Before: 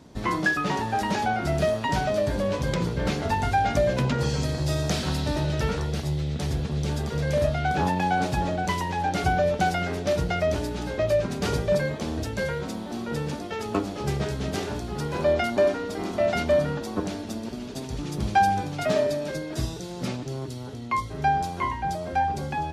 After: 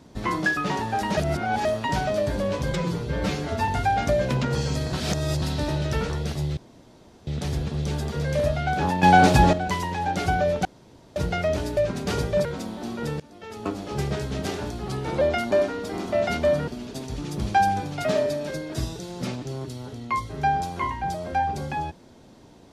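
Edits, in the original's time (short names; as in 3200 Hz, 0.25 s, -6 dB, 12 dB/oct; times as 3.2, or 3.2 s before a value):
1.17–1.65 reverse
2.72–3.36 stretch 1.5×
4.61–5.1 reverse
6.25 insert room tone 0.70 s
8.01–8.51 gain +9.5 dB
9.63–10.14 room tone
10.75–11.12 cut
11.8–12.54 cut
13.29–14.03 fade in, from -23.5 dB
14.97–15.27 speed 90%
16.73–17.48 cut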